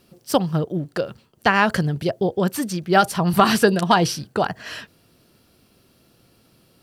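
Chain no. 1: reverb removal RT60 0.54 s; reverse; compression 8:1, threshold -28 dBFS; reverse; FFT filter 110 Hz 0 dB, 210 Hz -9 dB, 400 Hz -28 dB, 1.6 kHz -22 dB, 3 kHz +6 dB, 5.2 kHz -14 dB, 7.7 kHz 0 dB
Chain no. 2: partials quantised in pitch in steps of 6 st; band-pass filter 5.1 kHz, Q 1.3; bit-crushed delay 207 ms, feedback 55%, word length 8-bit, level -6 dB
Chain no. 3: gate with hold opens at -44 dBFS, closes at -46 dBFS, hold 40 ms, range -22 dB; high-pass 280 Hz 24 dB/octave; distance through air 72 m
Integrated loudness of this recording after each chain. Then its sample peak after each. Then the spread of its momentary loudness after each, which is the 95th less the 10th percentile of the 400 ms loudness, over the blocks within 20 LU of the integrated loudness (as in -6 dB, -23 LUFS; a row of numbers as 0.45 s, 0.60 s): -39.5 LUFS, -21.0 LUFS, -22.5 LUFS; -23.5 dBFS, -7.0 dBFS, -1.5 dBFS; 8 LU, 17 LU, 12 LU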